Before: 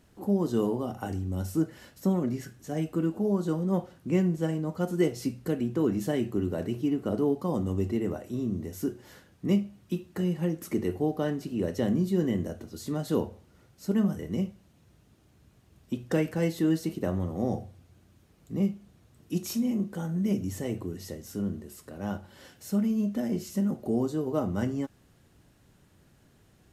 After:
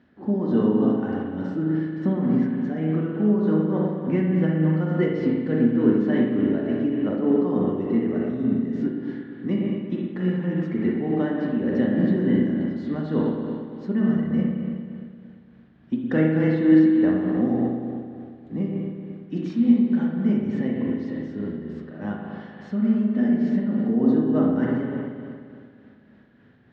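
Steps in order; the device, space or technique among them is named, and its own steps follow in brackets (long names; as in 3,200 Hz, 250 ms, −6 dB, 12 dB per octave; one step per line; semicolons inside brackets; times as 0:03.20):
combo amplifier with spring reverb and tremolo (spring reverb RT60 2.3 s, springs 38/57 ms, chirp 30 ms, DRR −3 dB; amplitude tremolo 3.4 Hz, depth 34%; loudspeaker in its box 98–3,700 Hz, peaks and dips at 240 Hz +10 dB, 1,700 Hz +9 dB, 2,700 Hz −4 dB)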